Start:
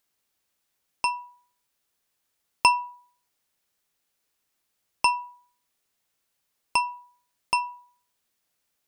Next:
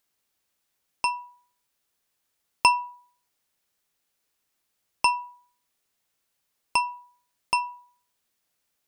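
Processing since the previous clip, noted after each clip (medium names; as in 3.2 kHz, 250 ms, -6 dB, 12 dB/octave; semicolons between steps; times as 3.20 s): no audible change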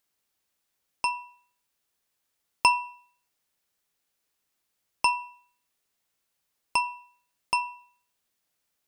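feedback comb 60 Hz, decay 0.54 s, harmonics odd, mix 40%; trim +2 dB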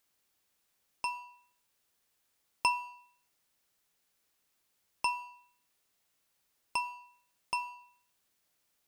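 companding laws mixed up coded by mu; trim -8.5 dB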